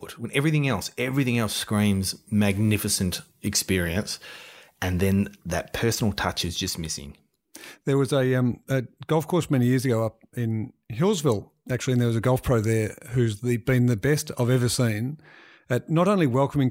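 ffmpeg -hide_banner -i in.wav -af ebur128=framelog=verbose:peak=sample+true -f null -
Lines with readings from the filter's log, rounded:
Integrated loudness:
  I:         -24.7 LUFS
  Threshold: -35.0 LUFS
Loudness range:
  LRA:         3.1 LU
  Threshold: -45.2 LUFS
  LRA low:   -26.9 LUFS
  LRA high:  -23.8 LUFS
Sample peak:
  Peak:       -7.6 dBFS
True peak:
  Peak:       -7.6 dBFS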